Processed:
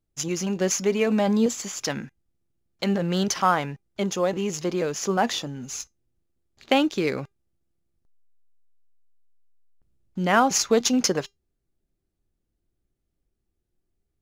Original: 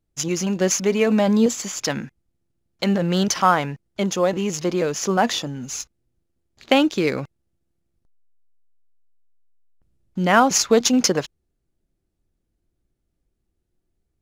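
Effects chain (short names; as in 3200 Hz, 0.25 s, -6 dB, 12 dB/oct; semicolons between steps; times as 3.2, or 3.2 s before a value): resonator 400 Hz, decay 0.16 s, harmonics all, mix 40%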